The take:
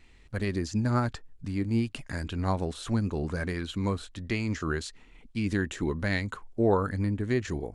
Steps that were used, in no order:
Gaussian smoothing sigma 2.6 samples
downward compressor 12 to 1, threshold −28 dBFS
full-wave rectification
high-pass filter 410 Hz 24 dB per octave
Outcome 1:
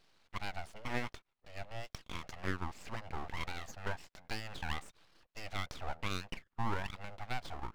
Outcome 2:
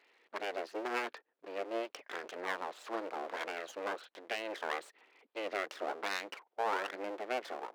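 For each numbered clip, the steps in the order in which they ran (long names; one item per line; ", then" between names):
high-pass filter, then downward compressor, then Gaussian smoothing, then full-wave rectification
Gaussian smoothing, then full-wave rectification, then high-pass filter, then downward compressor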